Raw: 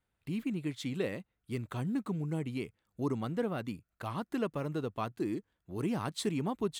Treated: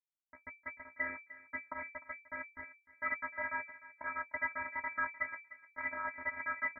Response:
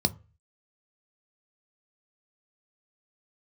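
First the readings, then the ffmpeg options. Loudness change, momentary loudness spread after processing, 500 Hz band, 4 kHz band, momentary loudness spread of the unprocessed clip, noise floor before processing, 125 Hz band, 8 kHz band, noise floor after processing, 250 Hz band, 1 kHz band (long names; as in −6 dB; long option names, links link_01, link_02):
−3.5 dB, 11 LU, −13.5 dB, below −40 dB, 7 LU, −83 dBFS, below −25 dB, below −30 dB, −80 dBFS, −23.0 dB, +0.5 dB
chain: -filter_complex "[0:a]equalizer=frequency=210:width_type=o:width=1.4:gain=-15,aresample=11025,acrusher=bits=5:mix=0:aa=0.000001,aresample=44100,flanger=delay=7.2:depth=8.7:regen=-35:speed=1.6:shape=triangular,afftfilt=real='hypot(re,im)*cos(PI*b)':imag='0':win_size=512:overlap=0.75,afreqshift=470,asplit=2[link_01][link_02];[link_02]adelay=302,lowpass=frequency=1200:poles=1,volume=-13.5dB,asplit=2[link_03][link_04];[link_04]adelay=302,lowpass=frequency=1200:poles=1,volume=0.23,asplit=2[link_05][link_06];[link_06]adelay=302,lowpass=frequency=1200:poles=1,volume=0.23[link_07];[link_03][link_05][link_07]amix=inputs=3:normalize=0[link_08];[link_01][link_08]amix=inputs=2:normalize=0,lowpass=frequency=2400:width_type=q:width=0.5098,lowpass=frequency=2400:width_type=q:width=0.6013,lowpass=frequency=2400:width_type=q:width=0.9,lowpass=frequency=2400:width_type=q:width=2.563,afreqshift=-2800,volume=9dB"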